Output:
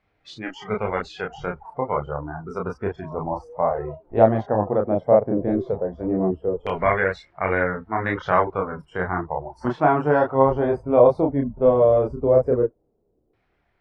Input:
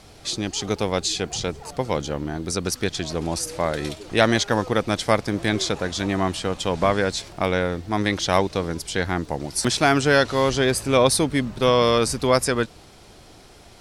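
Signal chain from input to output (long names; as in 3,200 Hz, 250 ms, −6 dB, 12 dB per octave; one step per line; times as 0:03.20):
noise reduction from a noise print of the clip's start 21 dB
auto-filter low-pass saw down 0.15 Hz 420–2,100 Hz
multi-voice chorus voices 2, 0.48 Hz, delay 30 ms, depth 3.2 ms
level +1.5 dB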